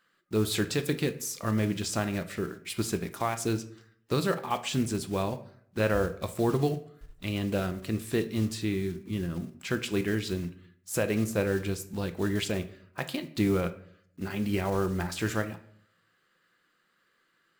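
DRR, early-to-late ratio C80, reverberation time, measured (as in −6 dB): 9.5 dB, 18.0 dB, 0.65 s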